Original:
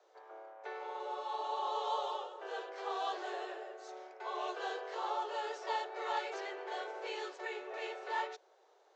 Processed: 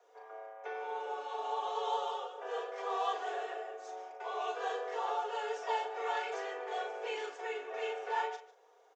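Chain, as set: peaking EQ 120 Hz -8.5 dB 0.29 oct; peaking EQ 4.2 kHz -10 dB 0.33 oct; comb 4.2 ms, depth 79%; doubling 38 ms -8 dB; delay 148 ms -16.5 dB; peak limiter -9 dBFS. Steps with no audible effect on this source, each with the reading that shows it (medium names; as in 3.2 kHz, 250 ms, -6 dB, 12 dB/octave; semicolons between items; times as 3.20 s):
peaking EQ 120 Hz: input has nothing below 320 Hz; peak limiter -9 dBFS: peak at its input -21.0 dBFS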